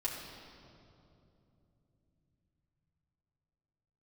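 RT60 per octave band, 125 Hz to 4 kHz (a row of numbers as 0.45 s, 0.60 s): 5.9 s, 4.8 s, 3.4 s, 2.5 s, 1.9 s, 1.8 s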